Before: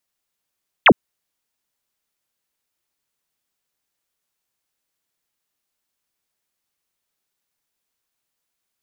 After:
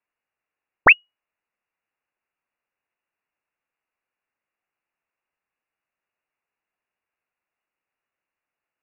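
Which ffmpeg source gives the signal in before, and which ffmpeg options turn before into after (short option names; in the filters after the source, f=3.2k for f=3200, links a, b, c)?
-f lavfi -i "aevalsrc='0.531*clip(t/0.002,0,1)*clip((0.06-t)/0.002,0,1)*sin(2*PI*3700*0.06/log(150/3700)*(exp(log(150/3700)*t/0.06)-1))':d=0.06:s=44100"
-af "lowpass=f=2.5k:t=q:w=0.5098,lowpass=f=2.5k:t=q:w=0.6013,lowpass=f=2.5k:t=q:w=0.9,lowpass=f=2.5k:t=q:w=2.563,afreqshift=-2900"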